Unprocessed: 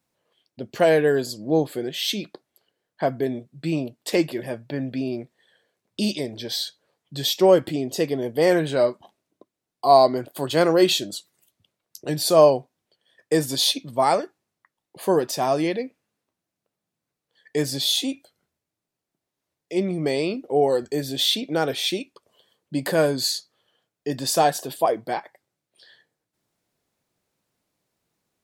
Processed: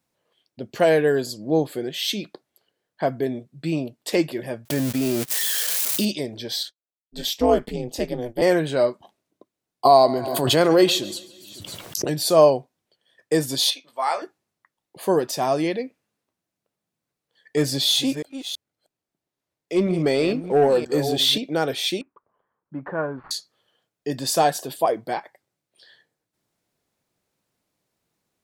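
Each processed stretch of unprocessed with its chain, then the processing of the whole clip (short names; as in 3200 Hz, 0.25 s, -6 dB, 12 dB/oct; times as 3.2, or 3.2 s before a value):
4.65–6.05 switching spikes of -21.5 dBFS + gate -35 dBFS, range -55 dB + fast leveller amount 70%
6.63–8.42 expander -34 dBFS + ring modulator 120 Hz
9.85–12.14 feedback echo 0.139 s, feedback 43%, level -18 dB + backwards sustainer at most 34 dB/s
13.7–14.22 HPF 930 Hz + high shelf 5200 Hz -10.5 dB + doubler 19 ms -6 dB
17.57–21.38 reverse delay 0.328 s, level -11 dB + high shelf 6000 Hz -3.5 dB + sample leveller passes 1
22.01–23.31 switching dead time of 0.088 ms + LPF 1400 Hz 24 dB/oct + resonant low shelf 780 Hz -6.5 dB, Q 1.5
whole clip: dry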